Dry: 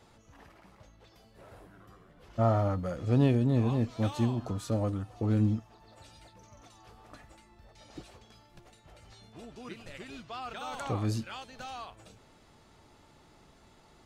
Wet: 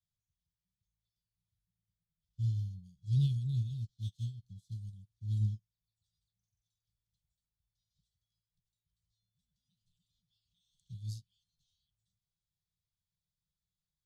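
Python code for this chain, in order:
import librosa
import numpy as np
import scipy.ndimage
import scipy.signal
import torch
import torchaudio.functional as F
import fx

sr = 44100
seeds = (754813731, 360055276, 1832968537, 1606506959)

y = scipy.signal.sosfilt(scipy.signal.cheby1(5, 1.0, [180.0, 3300.0], 'bandstop', fs=sr, output='sos'), x)
y = fx.upward_expand(y, sr, threshold_db=-45.0, expansion=2.5)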